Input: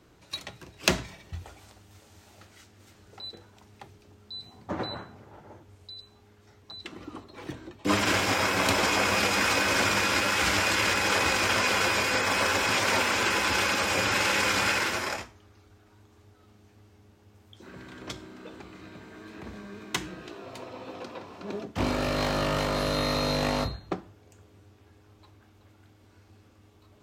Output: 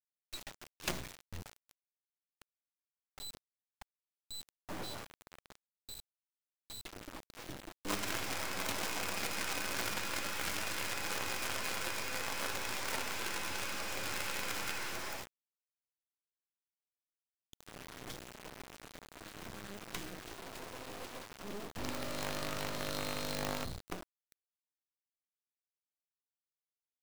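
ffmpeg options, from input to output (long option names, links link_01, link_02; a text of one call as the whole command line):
ffmpeg -i in.wav -af "bandreject=frequency=48.39:width_type=h:width=4,bandreject=frequency=96.78:width_type=h:width=4,bandreject=frequency=145.17:width_type=h:width=4,bandreject=frequency=193.56:width_type=h:width=4,bandreject=frequency=241.95:width_type=h:width=4,bandreject=frequency=290.34:width_type=h:width=4,bandreject=frequency=338.73:width_type=h:width=4,bandreject=frequency=387.12:width_type=h:width=4,bandreject=frequency=435.51:width_type=h:width=4,bandreject=frequency=483.9:width_type=h:width=4,bandreject=frequency=532.29:width_type=h:width=4,bandreject=frequency=580.68:width_type=h:width=4,acrusher=bits=4:dc=4:mix=0:aa=0.000001,aeval=exprs='(tanh(28.2*val(0)+0.6)-tanh(0.6))/28.2':channel_layout=same,volume=2.5dB" out.wav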